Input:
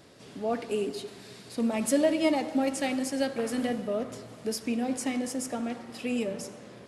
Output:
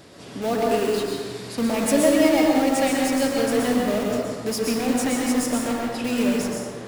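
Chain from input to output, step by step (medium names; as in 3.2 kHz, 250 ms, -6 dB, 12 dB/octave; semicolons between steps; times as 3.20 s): in parallel at -7 dB: integer overflow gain 29.5 dB; on the sum: plate-style reverb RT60 1.2 s, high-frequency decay 0.55×, pre-delay 105 ms, DRR -1.5 dB; trim +4 dB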